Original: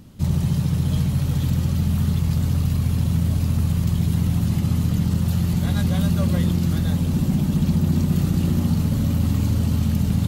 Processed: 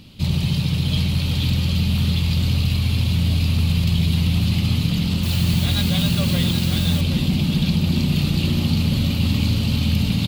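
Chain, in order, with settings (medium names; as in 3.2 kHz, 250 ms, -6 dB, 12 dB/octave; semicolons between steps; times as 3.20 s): high-order bell 3.3 kHz +13.5 dB 1.3 oct; delay 773 ms -8.5 dB; 5.23–7.01 s: word length cut 6-bit, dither triangular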